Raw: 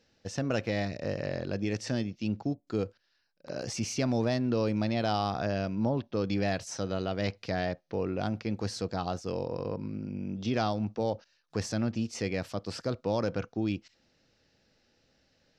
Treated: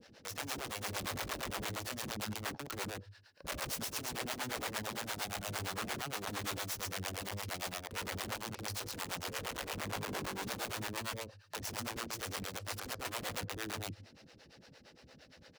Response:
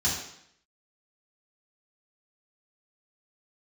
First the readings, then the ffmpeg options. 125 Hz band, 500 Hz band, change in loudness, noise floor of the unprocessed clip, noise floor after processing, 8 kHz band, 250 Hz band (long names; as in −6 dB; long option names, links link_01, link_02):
−12.0 dB, −13.0 dB, −7.0 dB, −73 dBFS, −61 dBFS, +2.5 dB, −15.0 dB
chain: -filter_complex "[0:a]aeval=exprs='if(lt(val(0),0),0.251*val(0),val(0))':channel_layout=same,bandreject=frequency=50:width_type=h:width=6,bandreject=frequency=100:width_type=h:width=6,acompressor=threshold=-43dB:ratio=8,aecho=1:1:139:0.562,alimiter=level_in=12.5dB:limit=-24dB:level=0:latency=1:release=18,volume=-12.5dB,highshelf=frequency=4200:gain=-5.5,aeval=exprs='(mod(224*val(0)+1,2)-1)/224':channel_layout=same,highpass=55,acrossover=split=400[link_01][link_02];[link_01]aeval=exprs='val(0)*(1-1/2+1/2*cos(2*PI*8.7*n/s))':channel_layout=same[link_03];[link_02]aeval=exprs='val(0)*(1-1/2-1/2*cos(2*PI*8.7*n/s))':channel_layout=same[link_04];[link_03][link_04]amix=inputs=2:normalize=0,volume=18dB"